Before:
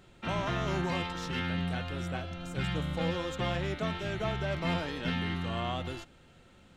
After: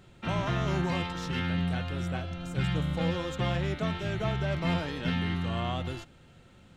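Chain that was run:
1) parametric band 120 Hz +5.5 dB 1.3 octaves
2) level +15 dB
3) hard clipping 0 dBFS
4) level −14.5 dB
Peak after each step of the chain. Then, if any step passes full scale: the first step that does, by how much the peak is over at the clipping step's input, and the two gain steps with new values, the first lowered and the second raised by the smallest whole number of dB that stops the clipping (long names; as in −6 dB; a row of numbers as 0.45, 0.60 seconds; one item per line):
−18.0, −3.0, −3.0, −17.5 dBFS
no step passes full scale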